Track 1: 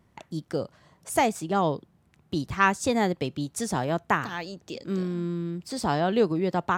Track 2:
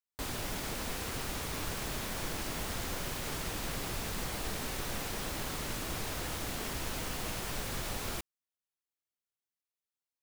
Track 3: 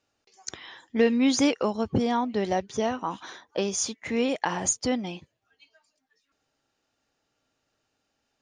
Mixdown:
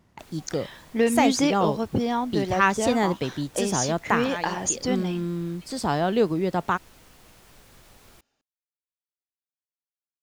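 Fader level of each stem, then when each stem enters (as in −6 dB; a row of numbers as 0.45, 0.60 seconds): +1.0, −15.5, 0.0 decibels; 0.00, 0.00, 0.00 seconds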